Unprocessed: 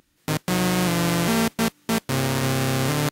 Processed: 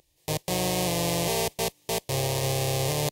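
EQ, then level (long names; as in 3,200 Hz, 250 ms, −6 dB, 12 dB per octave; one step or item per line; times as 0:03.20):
phaser with its sweep stopped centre 580 Hz, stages 4
0.0 dB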